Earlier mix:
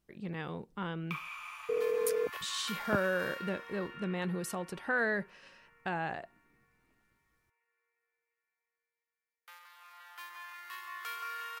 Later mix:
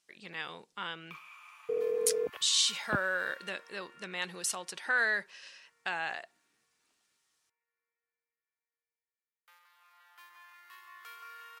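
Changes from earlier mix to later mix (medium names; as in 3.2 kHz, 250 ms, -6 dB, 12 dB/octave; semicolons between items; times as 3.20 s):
speech: add frequency weighting ITU-R 468; first sound -8.5 dB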